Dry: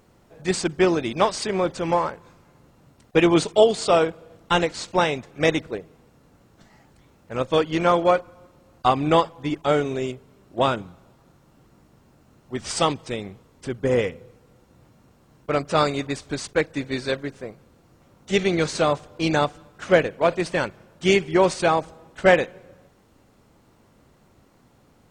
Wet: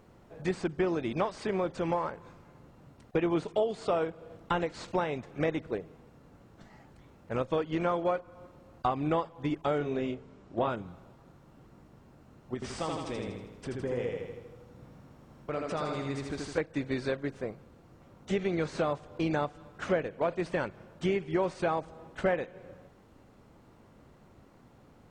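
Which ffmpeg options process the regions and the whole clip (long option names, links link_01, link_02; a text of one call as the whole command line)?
ffmpeg -i in.wav -filter_complex "[0:a]asettb=1/sr,asplit=3[link_01][link_02][link_03];[link_01]atrim=end=9.784[link_04];[link_02]atrim=start=9.78:end=10.7,asetpts=PTS-STARTPTS,afade=type=in:duration=0.004:curve=qsin,afade=type=out:start_time=0.916:duration=0.004:curve=qsin,acrossover=split=4600[link_05][link_06];[link_06]acompressor=threshold=-58dB:ratio=4:attack=1:release=60[link_07];[link_05][link_07]amix=inputs=2:normalize=0,lowpass=frequency=7700:width=0.5412,lowpass=frequency=7700:width=1.3066,asplit=2[link_08][link_09];[link_09]adelay=27,volume=-7.5dB[link_10];[link_08][link_10]amix=inputs=2:normalize=0,atrim=end_sample=40572[link_11];[link_03]atrim=start=10.696[link_12];[link_04][link_11]acrossfade=duration=0.004:curve1=hsin:curve2=qsin[link_13];[link_13][link_12]acrossfade=duration=0.004:curve1=qsin:curve2=hsin,asettb=1/sr,asplit=3[link_14][link_15][link_16];[link_14]atrim=end=12.544[link_17];[link_15]atrim=start=12.54:end=16.58,asetpts=PTS-STARTPTS,afade=type=in:duration=0.004:curve=qsin,afade=type=out:start_time=4.036:duration=0.004:curve=qsin,acompressor=threshold=-38dB:ratio=2:attack=3.2:release=140:knee=1:detection=peak,aecho=1:1:80|160|240|320|400|480|560|640:0.708|0.396|0.222|0.124|0.0696|0.039|0.0218|0.0122,atrim=end_sample=178164[link_18];[link_16]atrim=start=16.576[link_19];[link_17][link_18]acrossfade=duration=0.004:curve1=hsin:curve2=qsin[link_20];[link_20][link_19]acrossfade=duration=0.004:curve1=qsin:curve2=hsin,acrossover=split=2500[link_21][link_22];[link_22]acompressor=threshold=-35dB:ratio=4:attack=1:release=60[link_23];[link_21][link_23]amix=inputs=2:normalize=0,highshelf=frequency=3500:gain=-9,acompressor=threshold=-29dB:ratio=3" out.wav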